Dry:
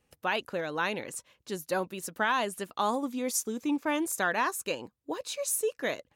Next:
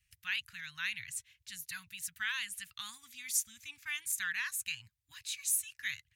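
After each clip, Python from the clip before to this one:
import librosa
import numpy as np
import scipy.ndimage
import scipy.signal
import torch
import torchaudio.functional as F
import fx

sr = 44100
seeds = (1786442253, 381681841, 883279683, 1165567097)

y = scipy.signal.sosfilt(scipy.signal.cheby1(3, 1.0, [110.0, 1900.0], 'bandstop', fs=sr, output='sos'), x)
y = fx.dynamic_eq(y, sr, hz=5200.0, q=3.4, threshold_db=-54.0, ratio=4.0, max_db=-4)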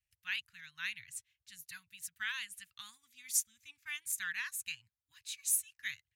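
y = fx.upward_expand(x, sr, threshold_db=-57.0, expansion=1.5)
y = y * 10.0 ** (1.0 / 20.0)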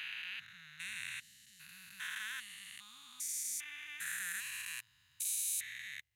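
y = fx.spec_steps(x, sr, hold_ms=400)
y = y * 10.0 ** (5.5 / 20.0)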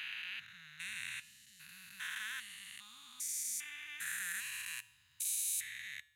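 y = fx.comb_fb(x, sr, f0_hz=75.0, decay_s=0.71, harmonics='odd', damping=0.0, mix_pct=50)
y = y * 10.0 ** (5.5 / 20.0)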